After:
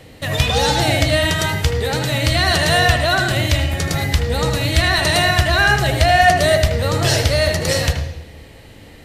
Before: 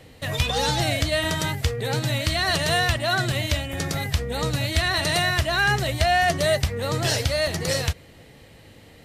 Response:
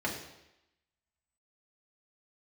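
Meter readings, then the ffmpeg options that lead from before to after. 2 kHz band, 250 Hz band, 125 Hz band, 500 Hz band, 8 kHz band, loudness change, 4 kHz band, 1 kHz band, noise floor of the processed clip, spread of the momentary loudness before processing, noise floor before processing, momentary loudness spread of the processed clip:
+7.0 dB, +6.5 dB, +7.5 dB, +7.0 dB, +5.5 dB, +7.0 dB, +6.0 dB, +7.5 dB, −41 dBFS, 6 LU, −49 dBFS, 6 LU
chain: -filter_complex "[0:a]asubboost=boost=2:cutoff=70,asplit=2[link_01][link_02];[1:a]atrim=start_sample=2205,adelay=76[link_03];[link_02][link_03]afir=irnorm=-1:irlink=0,volume=-12dB[link_04];[link_01][link_04]amix=inputs=2:normalize=0,volume=5.5dB"

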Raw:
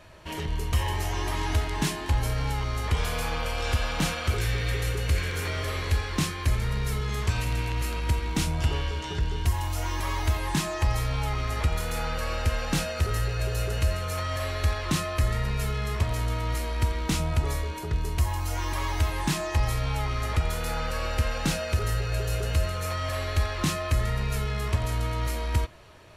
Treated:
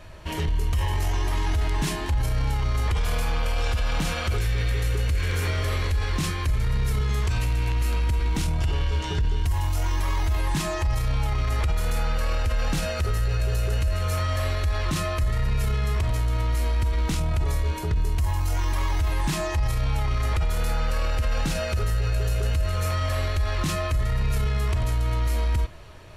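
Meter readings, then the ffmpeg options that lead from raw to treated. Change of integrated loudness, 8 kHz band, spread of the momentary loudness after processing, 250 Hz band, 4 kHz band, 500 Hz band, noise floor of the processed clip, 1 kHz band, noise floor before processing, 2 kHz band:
+2.5 dB, −1.0 dB, 1 LU, 0.0 dB, −0.5 dB, +0.5 dB, −29 dBFS, 0.0 dB, −34 dBFS, 0.0 dB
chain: -af "lowshelf=frequency=82:gain=11,alimiter=limit=-20dB:level=0:latency=1:release=24,volume=3dB"

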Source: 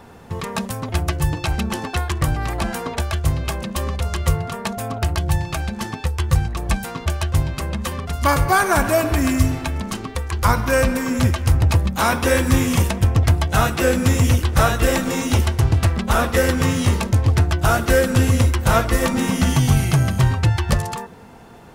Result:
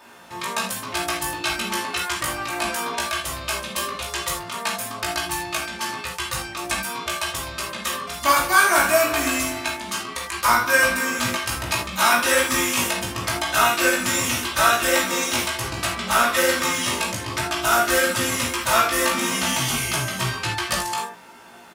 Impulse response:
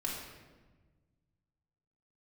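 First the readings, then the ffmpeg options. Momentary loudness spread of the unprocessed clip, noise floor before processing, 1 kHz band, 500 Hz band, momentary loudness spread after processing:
9 LU, −35 dBFS, +1.5 dB, −3.0 dB, 10 LU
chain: -filter_complex "[0:a]highpass=frequency=1400:poles=1,asplit=2[link_01][link_02];[link_02]adelay=17,volume=-3.5dB[link_03];[link_01][link_03]amix=inputs=2:normalize=0[link_04];[1:a]atrim=start_sample=2205,atrim=end_sample=3969[link_05];[link_04][link_05]afir=irnorm=-1:irlink=0,volume=2.5dB"

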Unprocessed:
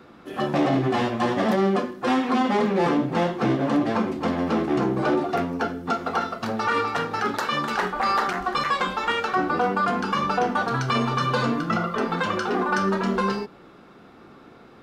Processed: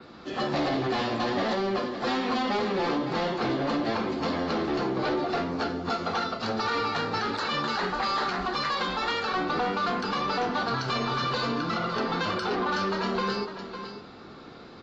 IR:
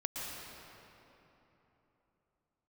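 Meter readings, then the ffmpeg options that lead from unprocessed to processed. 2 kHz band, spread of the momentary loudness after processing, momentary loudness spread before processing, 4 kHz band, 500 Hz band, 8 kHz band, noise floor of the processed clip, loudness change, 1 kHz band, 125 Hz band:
−3.5 dB, 3 LU, 4 LU, +1.5 dB, −4.0 dB, −4.0 dB, −46 dBFS, −4.5 dB, −4.0 dB, −6.5 dB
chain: -filter_complex "[0:a]adynamicequalizer=threshold=0.00282:dfrequency=6400:dqfactor=1.4:tfrequency=6400:tqfactor=1.4:attack=5:release=100:ratio=0.375:range=2:mode=cutabove:tftype=bell,asplit=2[link_01][link_02];[1:a]atrim=start_sample=2205,afade=type=out:start_time=0.34:duration=0.01,atrim=end_sample=15435[link_03];[link_02][link_03]afir=irnorm=-1:irlink=0,volume=-22dB[link_04];[link_01][link_04]amix=inputs=2:normalize=0,acrossover=split=300[link_05][link_06];[link_05]acompressor=threshold=-31dB:ratio=6[link_07];[link_07][link_06]amix=inputs=2:normalize=0,asoftclip=type=tanh:threshold=-19dB,equalizer=frequency=4400:width_type=o:width=0.55:gain=11.5,aecho=1:1:554:0.211,alimiter=limit=-21.5dB:level=0:latency=1:release=112" -ar 24000 -c:a aac -b:a 24k

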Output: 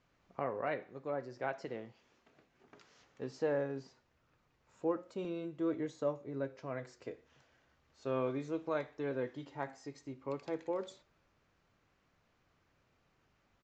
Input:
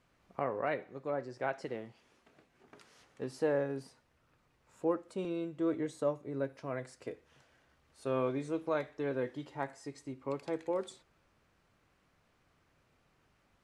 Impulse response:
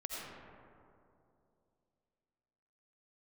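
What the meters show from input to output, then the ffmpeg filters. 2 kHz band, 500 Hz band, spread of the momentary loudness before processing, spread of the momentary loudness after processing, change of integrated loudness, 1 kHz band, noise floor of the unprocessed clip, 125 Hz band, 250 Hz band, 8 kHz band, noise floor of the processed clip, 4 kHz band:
−2.5 dB, −2.5 dB, 11 LU, 11 LU, −2.5 dB, −2.5 dB, −73 dBFS, −2.5 dB, −2.5 dB, can't be measured, −75 dBFS, −2.5 dB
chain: -af "flanger=delay=6.7:depth=3.3:regen=-87:speed=0.35:shape=triangular,aresample=16000,aresample=44100,volume=2dB"

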